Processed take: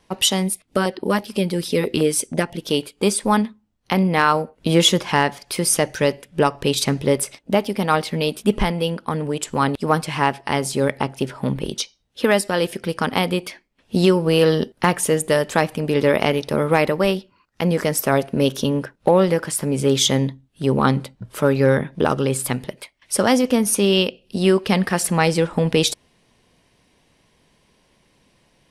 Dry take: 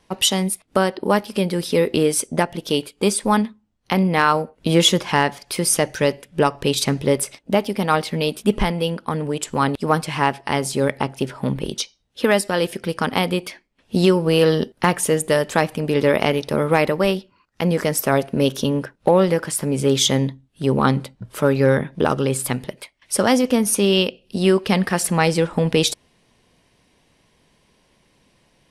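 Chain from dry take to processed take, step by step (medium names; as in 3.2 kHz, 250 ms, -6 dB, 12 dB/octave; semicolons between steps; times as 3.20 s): 0.53–2.65 s: LFO notch saw down 6.1 Hz 410–1900 Hz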